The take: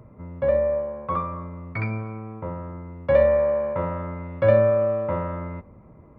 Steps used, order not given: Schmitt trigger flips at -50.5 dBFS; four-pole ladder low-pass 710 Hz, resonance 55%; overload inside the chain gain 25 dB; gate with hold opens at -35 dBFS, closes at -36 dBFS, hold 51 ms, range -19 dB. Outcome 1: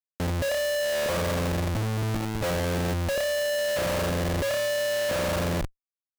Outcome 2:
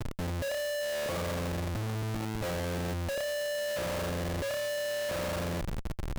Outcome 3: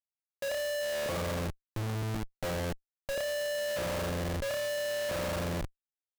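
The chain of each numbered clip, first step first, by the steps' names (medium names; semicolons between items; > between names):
gate with hold > four-pole ladder low-pass > Schmitt trigger > overload inside the chain; overload inside the chain > four-pole ladder low-pass > Schmitt trigger > gate with hold; overload inside the chain > four-pole ladder low-pass > gate with hold > Schmitt trigger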